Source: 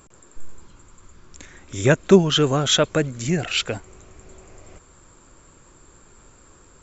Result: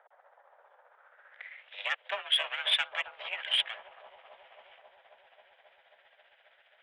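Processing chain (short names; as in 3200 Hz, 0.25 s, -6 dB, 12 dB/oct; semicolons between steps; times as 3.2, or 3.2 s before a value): minimum comb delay 0.61 ms; 2.15–3.69 dynamic EQ 2500 Hz, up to +5 dB, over -35 dBFS, Q 1.5; in parallel at +2 dB: compressor, threshold -26 dBFS, peak gain reduction 16.5 dB; on the sum: band-pass sweep 680 Hz -> 2600 Hz, 0.84–1.66; mistuned SSB +220 Hz 280–3100 Hz; soft clip -15.5 dBFS, distortion -17 dB; analogue delay 0.27 s, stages 2048, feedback 82%, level -7.5 dB; tremolo 15 Hz, depth 46%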